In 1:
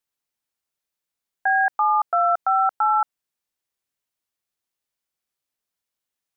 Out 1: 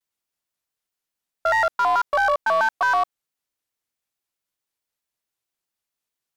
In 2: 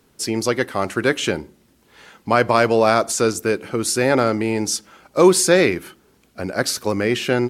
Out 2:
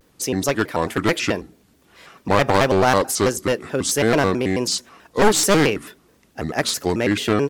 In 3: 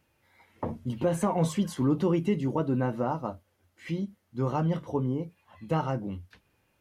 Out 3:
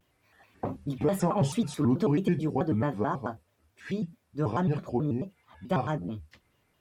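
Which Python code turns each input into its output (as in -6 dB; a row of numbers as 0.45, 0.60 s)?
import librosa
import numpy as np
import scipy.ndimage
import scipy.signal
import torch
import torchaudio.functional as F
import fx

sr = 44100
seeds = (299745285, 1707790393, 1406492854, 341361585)

y = np.minimum(x, 2.0 * 10.0 ** (-14.5 / 20.0) - x)
y = fx.vibrato_shape(y, sr, shape='square', rate_hz=4.6, depth_cents=250.0)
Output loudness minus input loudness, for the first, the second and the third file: -0.5, -1.0, 0.0 LU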